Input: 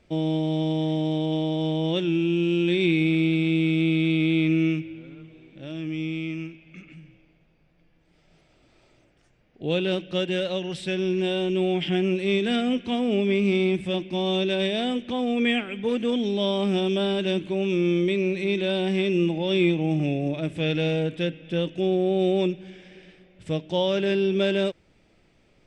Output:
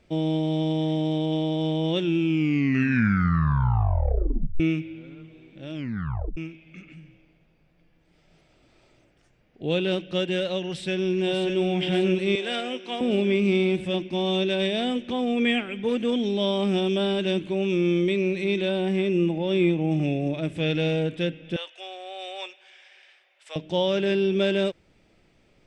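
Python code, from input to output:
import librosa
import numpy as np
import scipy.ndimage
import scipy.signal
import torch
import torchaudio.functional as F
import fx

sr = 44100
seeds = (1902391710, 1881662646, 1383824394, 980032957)

y = fx.echo_throw(x, sr, start_s=10.68, length_s=0.91, ms=590, feedback_pct=65, wet_db=-6.0)
y = fx.highpass(y, sr, hz=490.0, slope=12, at=(12.35, 13.01))
y = fx.peak_eq(y, sr, hz=4500.0, db=-6.0, octaves=1.9, at=(18.69, 19.92))
y = fx.highpass(y, sr, hz=760.0, slope=24, at=(21.56, 23.56))
y = fx.edit(y, sr, fx.tape_stop(start_s=2.18, length_s=2.42),
    fx.tape_stop(start_s=5.74, length_s=0.63), tone=tone)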